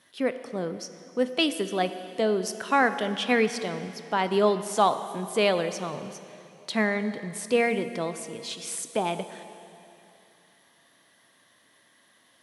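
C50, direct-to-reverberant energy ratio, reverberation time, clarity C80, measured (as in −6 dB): 11.0 dB, 10.0 dB, 2.9 s, 11.5 dB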